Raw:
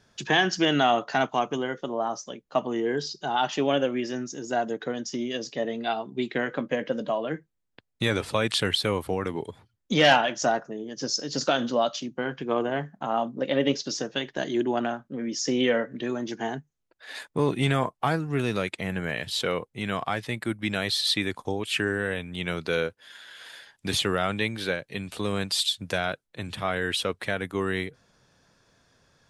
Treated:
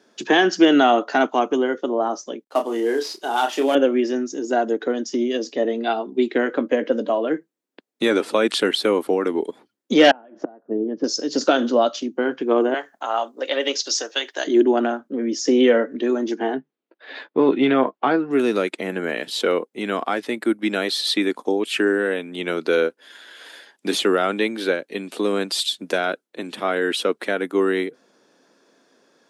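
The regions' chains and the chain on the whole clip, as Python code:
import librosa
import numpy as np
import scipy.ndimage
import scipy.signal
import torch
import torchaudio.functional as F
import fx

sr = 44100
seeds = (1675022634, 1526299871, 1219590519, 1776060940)

y = fx.chain(x, sr, fx.cvsd(bps=64000),
    fx.highpass(hz=530.0, slope=6),
    fx.doubler(ms=30.0, db=-6.5), at=(2.44, 3.75))
y = fx.chain(y, sr, fx.lowpass(hz=1200.0, slope=12),
    fx.low_shelf(hz=320.0, db=7.0),
    fx.gate_flip(shuts_db=-17.0, range_db=-28), at=(10.11, 11.04))
y = fx.chain(y, sr, fx.highpass(hz=690.0, slope=12),
    fx.high_shelf(hz=3200.0, db=10.5), at=(12.74, 14.47))
y = fx.chain(y, sr, fx.lowpass(hz=3900.0, slope=24),
    fx.doubler(ms=15.0, db=-10.5), at=(16.39, 18.31))
y = fx.dynamic_eq(y, sr, hz=1400.0, q=5.8, threshold_db=-47.0, ratio=4.0, max_db=4)
y = scipy.signal.sosfilt(scipy.signal.butter(4, 240.0, 'highpass', fs=sr, output='sos'), y)
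y = fx.peak_eq(y, sr, hz=320.0, db=9.5, octaves=1.8)
y = F.gain(torch.from_numpy(y), 2.0).numpy()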